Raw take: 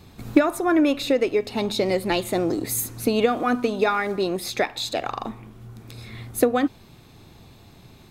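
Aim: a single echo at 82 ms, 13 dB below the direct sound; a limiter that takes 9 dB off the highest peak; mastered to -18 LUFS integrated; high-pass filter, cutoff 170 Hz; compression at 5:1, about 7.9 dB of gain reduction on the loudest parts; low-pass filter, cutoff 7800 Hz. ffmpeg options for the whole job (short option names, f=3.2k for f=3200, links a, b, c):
-af "highpass=170,lowpass=7.8k,acompressor=threshold=-21dB:ratio=5,alimiter=limit=-18.5dB:level=0:latency=1,aecho=1:1:82:0.224,volume=11dB"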